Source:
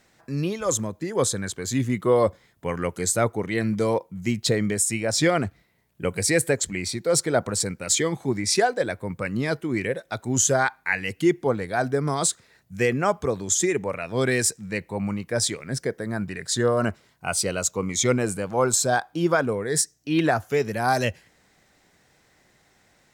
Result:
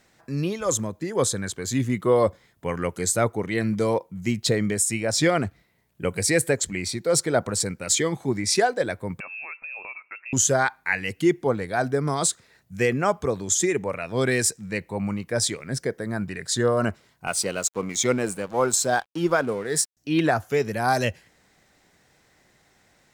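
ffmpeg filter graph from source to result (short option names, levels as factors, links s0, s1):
-filter_complex "[0:a]asettb=1/sr,asplit=3[s0][s1][s2];[s0]atrim=end=9.204[s3];[s1]atrim=start=9.2:end=10.33,asetpts=PTS-STARTPTS,afade=t=in:d=0.004:c=qsin,afade=t=out:st=1.126:d=0.004:c=qsin,acompressor=threshold=0.02:ratio=5:attack=3.2:release=140:knee=1:detection=peak,lowpass=f=2400:t=q:w=0.5098,lowpass=f=2400:t=q:w=0.6013,lowpass=f=2400:t=q:w=0.9,lowpass=f=2400:t=q:w=2.563,afreqshift=-2800[s4];[s2]atrim=start=10.326[s5];[s3][s4]acrossfade=d=0.004:c1=hsin:c2=qsin[s6];[s6][s5]acrossfade=d=0.004:c1=qsin:c2=hsin,asettb=1/sr,asplit=3[s7][s8][s9];[s7]atrim=end=17.274[s10];[s8]atrim=start=17.27:end=19.97,asetpts=PTS-STARTPTS,afade=t=in:d=0.004:c=qsin,afade=t=out:st=2.696:d=0.004:c=qsin,highpass=150,aeval=exprs='sgn(val(0))*max(abs(val(0))-0.00708,0)':c=same[s11];[s9]atrim=start=19.966[s12];[s10][s11]acrossfade=d=0.004:c1=hsin:c2=qsin[s13];[s13][s12]acrossfade=d=0.004:c1=qsin:c2=hsin"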